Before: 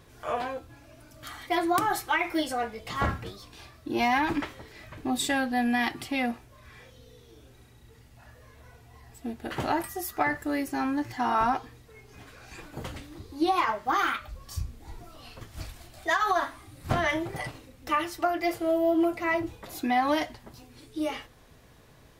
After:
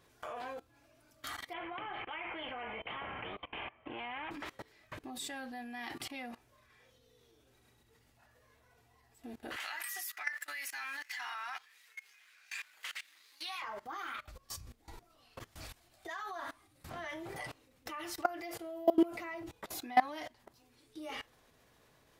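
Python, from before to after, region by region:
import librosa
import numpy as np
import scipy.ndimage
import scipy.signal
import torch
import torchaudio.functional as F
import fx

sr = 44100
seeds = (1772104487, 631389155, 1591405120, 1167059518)

y = fx.chain(x, sr, fx.cheby_ripple(hz=3200.0, ripple_db=9),
    fx.spectral_comp(ratio=2.0), at=(1.53, 4.31))
y = fx.chain(y, sr, fx.highpass_res(hz=2000.0, q=1.8),
    fx.leveller(passes=1), at=(9.56, 13.62))
y = fx.level_steps(y, sr, step_db=22)
y = fx.low_shelf(y, sr, hz=210.0, db=-9.5)
y = y * librosa.db_to_amplitude(2.5)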